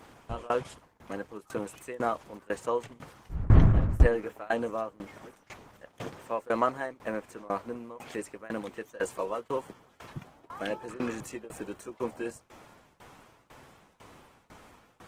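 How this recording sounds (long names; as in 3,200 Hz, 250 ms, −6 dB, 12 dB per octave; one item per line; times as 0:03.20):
tremolo saw down 2 Hz, depth 95%
Opus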